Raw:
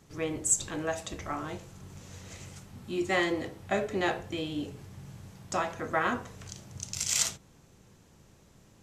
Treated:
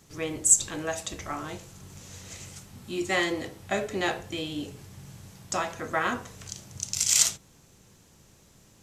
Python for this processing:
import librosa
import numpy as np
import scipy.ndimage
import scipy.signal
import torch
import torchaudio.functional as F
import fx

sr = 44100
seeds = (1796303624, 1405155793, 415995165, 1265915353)

y = fx.high_shelf(x, sr, hz=3100.0, db=8.0)